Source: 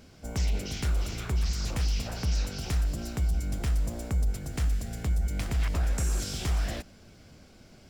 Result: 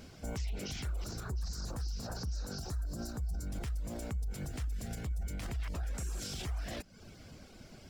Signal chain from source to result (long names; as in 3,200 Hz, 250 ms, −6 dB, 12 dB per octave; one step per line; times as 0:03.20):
brickwall limiter −32 dBFS, peak gain reduction 11.5 dB
reverb reduction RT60 0.57 s
0:01.04–0:03.47: flat-topped bell 2,600 Hz −15 dB 1 octave
level +2 dB